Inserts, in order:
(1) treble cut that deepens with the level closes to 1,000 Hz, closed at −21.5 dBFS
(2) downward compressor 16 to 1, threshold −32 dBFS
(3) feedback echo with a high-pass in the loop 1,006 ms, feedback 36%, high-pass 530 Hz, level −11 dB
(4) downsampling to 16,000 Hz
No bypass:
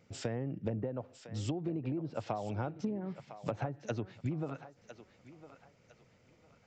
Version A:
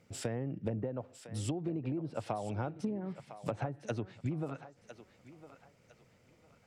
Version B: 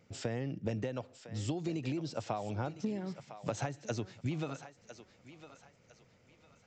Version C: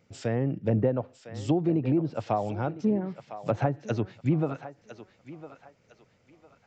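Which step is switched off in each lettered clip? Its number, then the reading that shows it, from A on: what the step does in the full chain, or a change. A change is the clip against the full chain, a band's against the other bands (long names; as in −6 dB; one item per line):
4, 8 kHz band +4.0 dB
1, 8 kHz band +4.5 dB
2, average gain reduction 7.0 dB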